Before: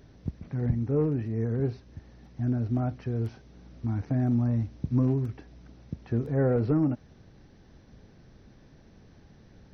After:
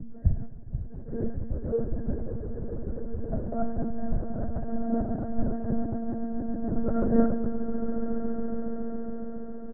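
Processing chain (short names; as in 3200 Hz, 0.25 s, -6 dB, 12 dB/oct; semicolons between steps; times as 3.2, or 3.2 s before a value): slices in reverse order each 0.151 s, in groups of 6; LPF 2100 Hz 24 dB/oct; tilt shelf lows +8.5 dB; notches 60/120/180/240/300/360/420/480/540 Hz; comb 3 ms, depth 97%; flange 1 Hz, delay 4.7 ms, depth 9.7 ms, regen -79%; fixed phaser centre 1500 Hz, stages 8; swelling echo 0.139 s, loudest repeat 8, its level -8 dB; spring tank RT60 1.2 s, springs 54 ms, chirp 35 ms, DRR 8 dB; monotone LPC vocoder at 8 kHz 230 Hz; three-band expander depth 100%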